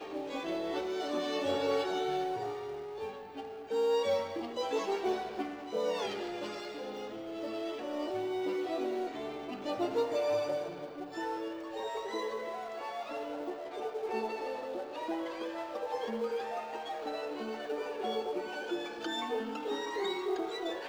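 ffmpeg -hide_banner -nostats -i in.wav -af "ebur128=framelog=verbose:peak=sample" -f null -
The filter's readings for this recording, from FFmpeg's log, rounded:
Integrated loudness:
  I:         -35.9 LUFS
  Threshold: -45.9 LUFS
Loudness range:
  LRA:         4.3 LU
  Threshold: -56.1 LUFS
  LRA low:   -38.2 LUFS
  LRA high:  -34.0 LUFS
Sample peak:
  Peak:      -20.1 dBFS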